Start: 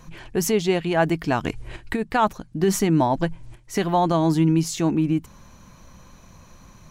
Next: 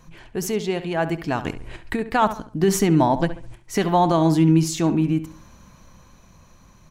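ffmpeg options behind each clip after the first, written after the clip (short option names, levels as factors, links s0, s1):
-filter_complex "[0:a]dynaudnorm=f=260:g=13:m=3.76,asplit=2[s0][s1];[s1]adelay=69,lowpass=f=3200:p=1,volume=0.251,asplit=2[s2][s3];[s3]adelay=69,lowpass=f=3200:p=1,volume=0.36,asplit=2[s4][s5];[s5]adelay=69,lowpass=f=3200:p=1,volume=0.36,asplit=2[s6][s7];[s7]adelay=69,lowpass=f=3200:p=1,volume=0.36[s8];[s2][s4][s6][s8]amix=inputs=4:normalize=0[s9];[s0][s9]amix=inputs=2:normalize=0,volume=0.631"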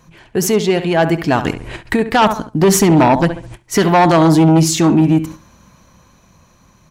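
-af "aeval=exprs='0.596*(cos(1*acos(clip(val(0)/0.596,-1,1)))-cos(1*PI/2))+0.237*(cos(5*acos(clip(val(0)/0.596,-1,1)))-cos(5*PI/2))':c=same,agate=range=0.398:threshold=0.0355:ratio=16:detection=peak,highpass=f=68:p=1,volume=1.19"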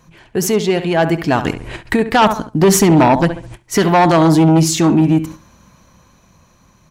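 -af "dynaudnorm=f=650:g=5:m=3.76,volume=0.891"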